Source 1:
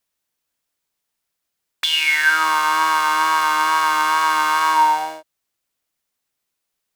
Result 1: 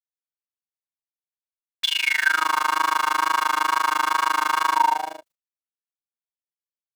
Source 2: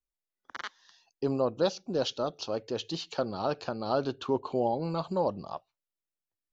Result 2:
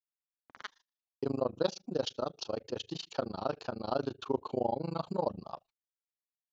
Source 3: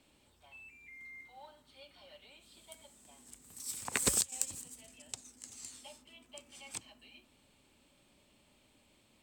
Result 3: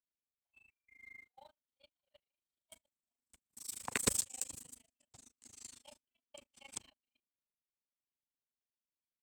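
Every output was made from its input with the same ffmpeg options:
ffmpeg -i in.wav -af "agate=range=-36dB:threshold=-52dB:ratio=16:detection=peak,tremolo=f=26:d=1" out.wav

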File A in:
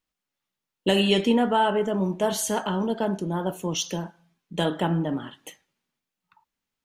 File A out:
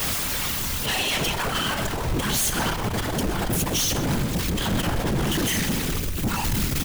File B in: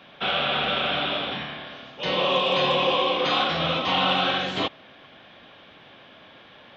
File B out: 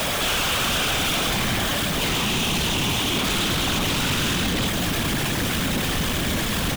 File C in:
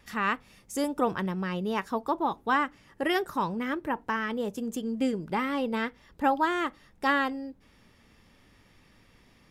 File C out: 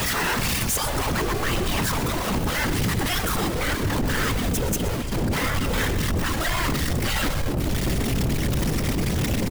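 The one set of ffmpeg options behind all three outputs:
ffmpeg -i in.wav -filter_complex "[0:a]aeval=exprs='val(0)+0.5*0.0531*sgn(val(0))':channel_layout=same,afftfilt=real='re*lt(hypot(re,im),0.282)':imag='im*lt(hypot(re,im),0.282)':win_size=1024:overlap=0.75,asubboost=boost=7.5:cutoff=220,aeval=exprs='(tanh(25.1*val(0)+0.5)-tanh(0.5))/25.1':channel_layout=same,highshelf=frequency=8300:gain=3.5,afftfilt=real='hypot(re,im)*cos(2*PI*random(0))':imag='hypot(re,im)*sin(2*PI*random(1))':win_size=512:overlap=0.75,aeval=exprs='0.0841*sin(PI/2*3.16*val(0)/0.0841)':channel_layout=same,asplit=2[link_01][link_02];[link_02]aecho=0:1:125:0.2[link_03];[link_01][link_03]amix=inputs=2:normalize=0,volume=2.5dB" out.wav

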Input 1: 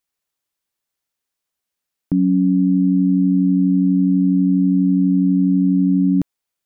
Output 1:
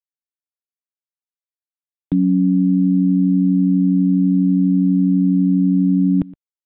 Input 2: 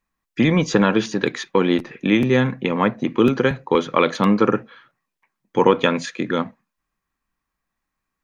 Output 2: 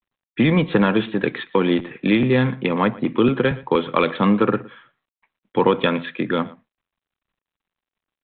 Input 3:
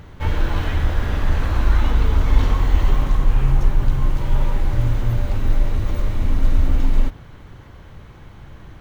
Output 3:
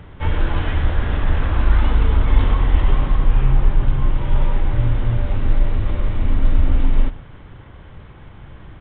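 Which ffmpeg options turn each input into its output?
ffmpeg -i in.wav -filter_complex "[0:a]acrossover=split=180|3000[link_01][link_02][link_03];[link_02]acompressor=threshold=-18dB:ratio=1.5[link_04];[link_01][link_04][link_03]amix=inputs=3:normalize=0,asplit=2[link_05][link_06];[link_06]aecho=0:1:118:0.0891[link_07];[link_05][link_07]amix=inputs=2:normalize=0,volume=1dB" -ar 8000 -c:a adpcm_g726 -b:a 40k out.wav

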